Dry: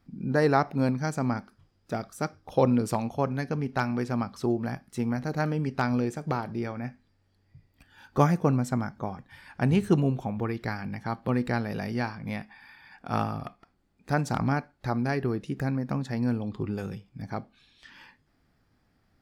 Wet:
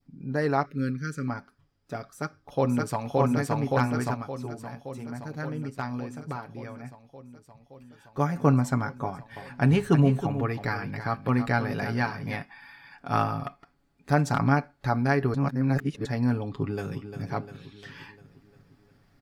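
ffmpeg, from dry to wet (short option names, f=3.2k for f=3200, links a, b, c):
-filter_complex "[0:a]asettb=1/sr,asplit=3[a][b][c];[a]atrim=end=0.654[d];[b]atrim=start=0.65:end=1.28,asetpts=PTS-STARTPTS,afade=t=in:d=0.004:c=qsin,afade=t=out:st=0.626:d=0.004:c=qsin,asuperstop=centerf=810:order=8:qfactor=1.1[e];[c]atrim=start=1.276[f];[d][e]acrossfade=d=0.004:c1=hsin:c2=qsin[g];[g][f]acrossfade=d=0.004:c1=qsin:c2=hsin,asplit=2[h][i];[i]afade=t=in:st=2.05:d=0.01,afade=t=out:st=3.16:d=0.01,aecho=0:1:570|1140|1710|2280|2850|3420|3990|4560|5130|5700|6270|6840:0.891251|0.668438|0.501329|0.375996|0.281997|0.211498|0.158624|0.118968|0.0892257|0.0669193|0.0501895|0.0376421[j];[h][j]amix=inputs=2:normalize=0,asettb=1/sr,asplit=3[k][l][m];[k]atrim=end=9.044[n];[l]atrim=start=9.04:end=12.35,asetpts=PTS-STARTPTS,afade=t=in:d=0.004:c=qsin,afade=t=out:st=3.306:d=0.004:c=qsin,aecho=1:1:321:0.299,atrim=end_sample=145971[o];[m]atrim=start=12.346[p];[n][o]acrossfade=d=0.004:c1=hsin:c2=qsin[q];[q][p]acrossfade=d=0.004:c1=qsin:c2=hsin,asplit=2[r][s];[s]afade=t=in:st=16.57:d=0.01,afade=t=out:st=17.21:d=0.01,aecho=0:1:350|700|1050|1400|1750|2100:0.334965|0.184231|0.101327|0.0557299|0.0306514|0.0168583[t];[r][t]amix=inputs=2:normalize=0,asplit=5[u][v][w][x][y];[u]atrim=end=4.142[z];[v]atrim=start=4.138:end=8.362,asetpts=PTS-STARTPTS,volume=-8dB[aa];[w]atrim=start=8.358:end=15.342[ab];[x]atrim=start=15.338:end=16.052,asetpts=PTS-STARTPTS,areverse[ac];[y]atrim=start=16.048[ad];[z][aa]acrossfade=d=0.004:c1=hsin:c2=hsin[ae];[ae][ab]acrossfade=d=0.004:c1=hsin:c2=hsin[af];[af][ac]acrossfade=d=0.004:c1=hsin:c2=hsin[ag];[ag][ad]acrossfade=d=0.004:c1=hsin:c2=hsin,adynamicequalizer=threshold=0.01:dfrequency=1400:dqfactor=1:tfrequency=1400:tqfactor=1:attack=5:release=100:ratio=0.375:range=2:mode=boostabove:tftype=bell,aecho=1:1:7.1:0.55,dynaudnorm=f=290:g=21:m=11.5dB,volume=-6dB"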